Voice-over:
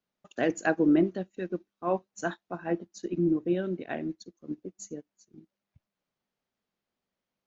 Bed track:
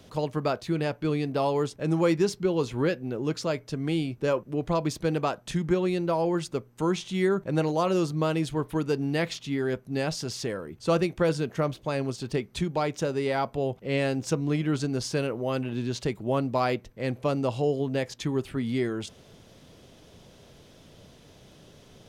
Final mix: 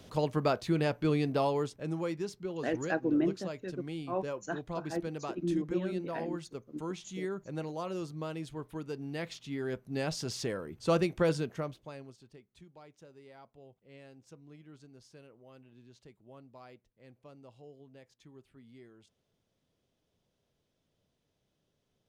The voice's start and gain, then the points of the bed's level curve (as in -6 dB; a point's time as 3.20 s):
2.25 s, -6.0 dB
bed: 1.30 s -1.5 dB
2.12 s -12.5 dB
8.95 s -12.5 dB
10.29 s -3.5 dB
11.35 s -3.5 dB
12.38 s -27 dB